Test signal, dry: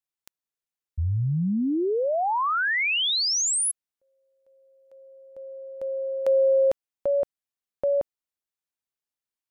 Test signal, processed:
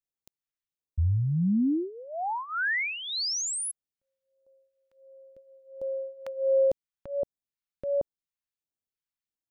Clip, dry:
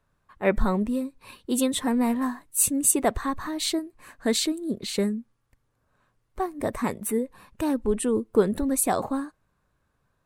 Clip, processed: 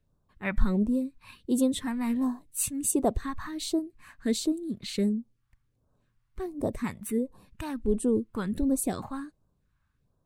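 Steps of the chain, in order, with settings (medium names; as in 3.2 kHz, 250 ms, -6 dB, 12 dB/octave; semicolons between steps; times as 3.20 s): peaking EQ 11 kHz -8.5 dB 2.7 oct; phase shifter stages 2, 1.4 Hz, lowest notch 410–2000 Hz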